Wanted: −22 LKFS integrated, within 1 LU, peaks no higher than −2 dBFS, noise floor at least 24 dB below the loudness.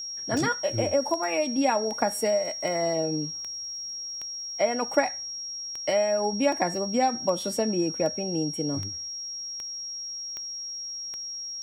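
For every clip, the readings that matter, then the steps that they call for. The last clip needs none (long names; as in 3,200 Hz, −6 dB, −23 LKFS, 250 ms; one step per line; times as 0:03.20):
number of clicks 15; interfering tone 5,600 Hz; level of the tone −33 dBFS; integrated loudness −27.5 LKFS; sample peak −9.0 dBFS; target loudness −22.0 LKFS
→ click removal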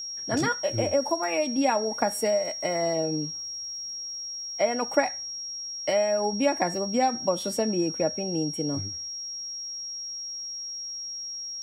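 number of clicks 0; interfering tone 5,600 Hz; level of the tone −33 dBFS
→ notch filter 5,600 Hz, Q 30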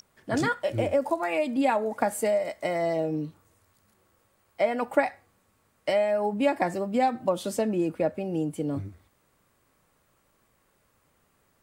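interfering tone none found; integrated loudness −27.5 LKFS; sample peak −9.5 dBFS; target loudness −22.0 LKFS
→ level +5.5 dB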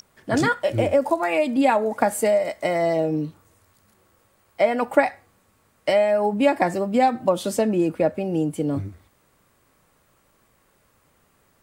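integrated loudness −22.0 LKFS; sample peak −4.0 dBFS; background noise floor −63 dBFS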